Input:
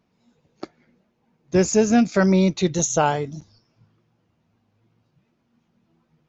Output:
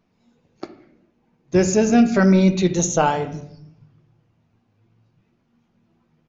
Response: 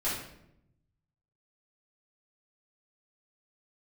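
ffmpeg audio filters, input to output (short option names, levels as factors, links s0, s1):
-filter_complex "[0:a]aresample=16000,aresample=44100,asplit=2[s0][s1];[s1]equalizer=f=2700:t=o:w=0.67:g=6.5[s2];[1:a]atrim=start_sample=2205,lowpass=3500,lowshelf=f=170:g=6.5[s3];[s2][s3]afir=irnorm=-1:irlink=0,volume=0.168[s4];[s0][s4]amix=inputs=2:normalize=0"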